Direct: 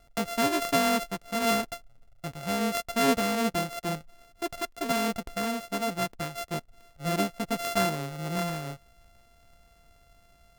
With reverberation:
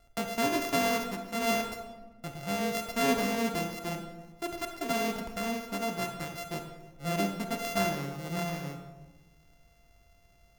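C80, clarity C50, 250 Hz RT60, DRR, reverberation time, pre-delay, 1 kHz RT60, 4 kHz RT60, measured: 8.5 dB, 6.5 dB, 1.7 s, 5.0 dB, 1.2 s, 28 ms, 1.1 s, 0.75 s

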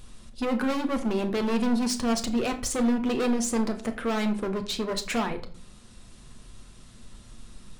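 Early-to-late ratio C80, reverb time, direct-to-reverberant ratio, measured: 17.5 dB, 0.45 s, 5.0 dB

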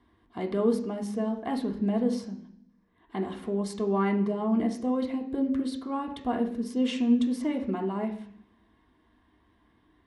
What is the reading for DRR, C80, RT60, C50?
0.5 dB, 13.5 dB, 0.60 s, 10.0 dB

